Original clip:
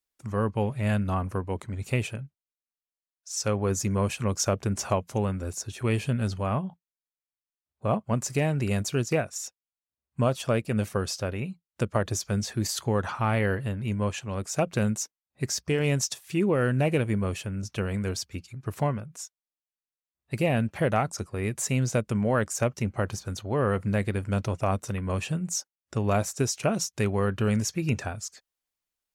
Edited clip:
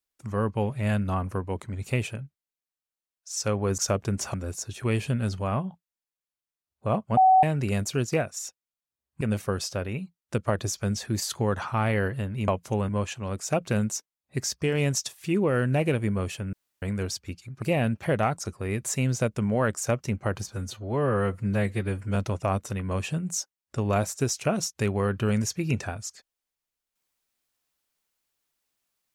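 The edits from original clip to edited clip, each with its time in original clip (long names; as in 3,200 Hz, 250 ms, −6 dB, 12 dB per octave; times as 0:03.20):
0:03.78–0:04.36: remove
0:04.92–0:05.33: move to 0:13.95
0:08.16–0:08.42: beep over 754 Hz −13.5 dBFS
0:10.20–0:10.68: remove
0:17.59–0:17.88: fill with room tone
0:18.68–0:20.35: remove
0:23.25–0:24.34: time-stretch 1.5×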